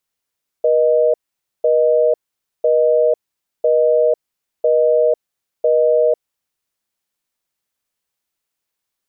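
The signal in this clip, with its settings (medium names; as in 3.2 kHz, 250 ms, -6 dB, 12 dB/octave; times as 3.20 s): call progress tone busy tone, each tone -13.5 dBFS 5.63 s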